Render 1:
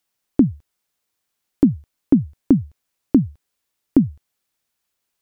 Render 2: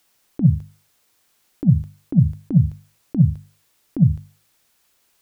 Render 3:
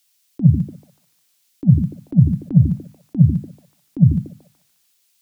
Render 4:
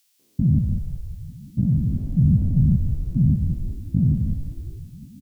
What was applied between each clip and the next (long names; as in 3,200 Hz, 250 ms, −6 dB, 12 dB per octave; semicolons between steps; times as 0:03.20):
compressor whose output falls as the input rises −19 dBFS, ratio −0.5; mains-hum notches 50/100/150/200/250 Hz; level +7.5 dB
echo through a band-pass that steps 146 ms, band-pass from 260 Hz, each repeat 0.7 octaves, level −3 dB; multiband upward and downward expander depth 40%; level +1.5 dB
spectrum averaged block by block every 200 ms; echo with shifted repeats 179 ms, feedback 61%, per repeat −59 Hz, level −6 dB